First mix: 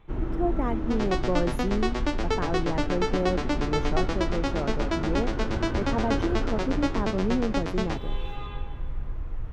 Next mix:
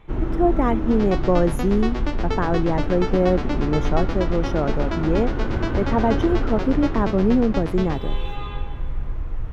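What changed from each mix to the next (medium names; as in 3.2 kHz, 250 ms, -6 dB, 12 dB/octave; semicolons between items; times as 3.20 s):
speech +8.5 dB; first sound +5.5 dB; second sound: add distance through air 73 m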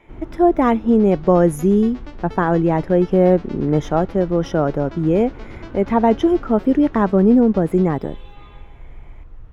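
speech +5.5 dB; first sound -12.0 dB; second sound -11.0 dB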